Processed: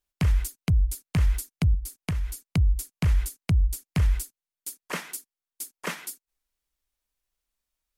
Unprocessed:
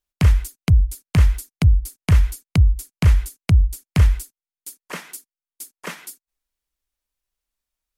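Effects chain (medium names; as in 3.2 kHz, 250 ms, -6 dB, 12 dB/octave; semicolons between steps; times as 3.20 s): peak limiter -15.5 dBFS, peak gain reduction 10.5 dB; 1.74–2.48 s: compression 4:1, threshold -26 dBFS, peak gain reduction 7 dB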